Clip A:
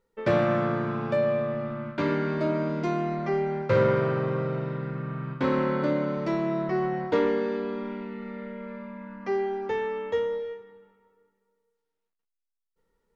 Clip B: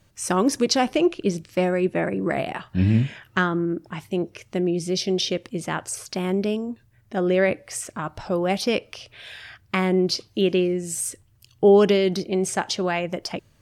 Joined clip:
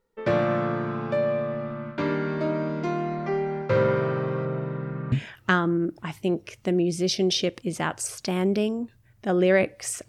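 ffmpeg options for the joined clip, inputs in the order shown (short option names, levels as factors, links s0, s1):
-filter_complex "[0:a]asettb=1/sr,asplit=3[s0][s1][s2];[s0]atrim=end=4.454[s3];[s1]atrim=start=4.45:end=5.12,asetpts=PTS-STARTPTS,afade=t=in:d=0.004:c=qsin,afade=t=out:st=0.666:d=0.004:c=qsin,aemphasis=mode=reproduction:type=75fm[s4];[s2]atrim=start=5.116[s5];[s3][s4]acrossfade=d=0.004:c1=hsin:c2=qsin[s6];[s6][s5]acrossfade=d=0.004:c1=qsin:c2=hsin,apad=whole_dur=10.08,atrim=end=10.08,atrim=end=5.122[s7];[1:a]atrim=start=2.998:end=7.96[s8];[s7][s8]acrossfade=d=0.004:c1=hsin:c2=hsin"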